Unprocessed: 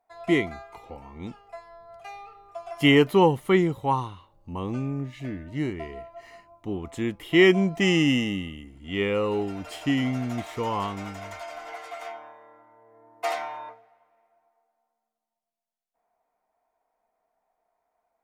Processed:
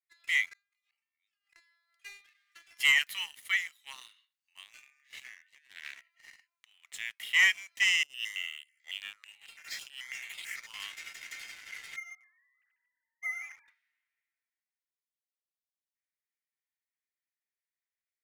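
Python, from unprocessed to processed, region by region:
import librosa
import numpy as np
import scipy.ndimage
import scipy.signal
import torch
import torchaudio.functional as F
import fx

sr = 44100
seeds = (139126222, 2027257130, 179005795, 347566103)

y = fx.chain(x, sr, fx.gate_flip(shuts_db=-37.0, range_db=-24),
    fx.sustainer(db_per_s=140.0), at=(0.53, 1.56))
y = fx.chain(y, sr, fx.lower_of_two(delay_ms=3.4),
    fx.highpass(hz=860.0, slope=12), at=(2.24, 2.67))
y = fx.chain(y, sr, fx.over_compress(threshold_db=-37.0, ratio=-1.0),
    fx.brickwall_highpass(low_hz=270.0),
    fx.doppler_dist(depth_ms=0.27), at=(5.55, 6.01))
y = fx.chain(y, sr, fx.peak_eq(hz=830.0, db=4.0, octaves=2.3),
    fx.over_compress(threshold_db=-26.0, ratio=-0.5),
    fx.phaser_held(hz=9.1, low_hz=510.0, high_hz=5900.0), at=(8.03, 10.74))
y = fx.chain(y, sr, fx.sine_speech(),
    fx.high_shelf(hz=2600.0, db=12.0),
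    fx.echo_single(ms=145, db=-9.5), at=(11.96, 13.68))
y = scipy.signal.sosfilt(scipy.signal.cheby1(4, 1.0, 1800.0, 'highpass', fs=sr, output='sos'), y)
y = fx.dynamic_eq(y, sr, hz=3800.0, q=1.5, threshold_db=-44.0, ratio=4.0, max_db=-3)
y = fx.leveller(y, sr, passes=2)
y = y * librosa.db_to_amplitude(-3.5)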